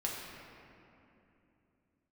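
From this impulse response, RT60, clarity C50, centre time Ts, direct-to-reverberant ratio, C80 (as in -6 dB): 2.9 s, 0.0 dB, 0.122 s, -3.5 dB, 1.5 dB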